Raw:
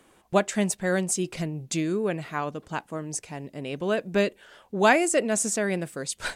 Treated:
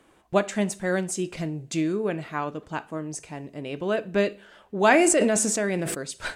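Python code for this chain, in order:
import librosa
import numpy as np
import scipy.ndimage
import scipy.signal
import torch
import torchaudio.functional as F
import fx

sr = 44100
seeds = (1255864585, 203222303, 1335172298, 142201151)

y = fx.high_shelf(x, sr, hz=5400.0, db=-7.0)
y = fx.rev_double_slope(y, sr, seeds[0], early_s=0.34, late_s=1.6, knee_db=-26, drr_db=12.0)
y = fx.sustainer(y, sr, db_per_s=20.0, at=(4.9, 5.94), fade=0.02)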